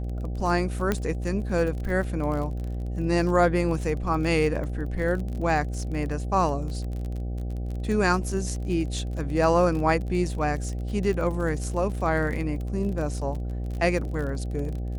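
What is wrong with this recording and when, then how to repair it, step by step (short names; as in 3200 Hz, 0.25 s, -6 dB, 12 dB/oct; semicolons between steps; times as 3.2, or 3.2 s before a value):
buzz 60 Hz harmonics 13 -30 dBFS
crackle 34/s -32 dBFS
0.92 pop -11 dBFS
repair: de-click; de-hum 60 Hz, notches 13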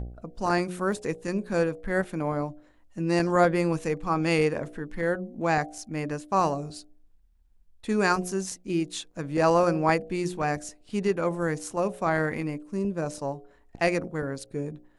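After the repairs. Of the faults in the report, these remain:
0.92 pop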